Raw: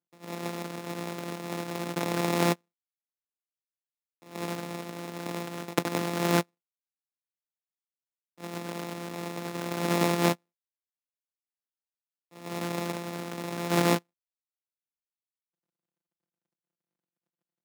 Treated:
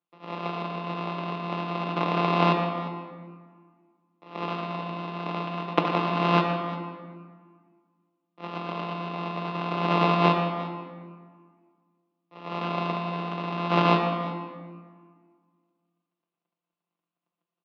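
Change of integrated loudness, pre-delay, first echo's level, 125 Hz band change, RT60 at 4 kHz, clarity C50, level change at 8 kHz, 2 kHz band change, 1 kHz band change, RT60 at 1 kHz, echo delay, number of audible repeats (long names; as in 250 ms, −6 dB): +3.5 dB, 5 ms, −12.5 dB, +4.5 dB, 1.1 s, 4.0 dB, below −20 dB, +3.0 dB, +8.5 dB, 1.7 s, 118 ms, 3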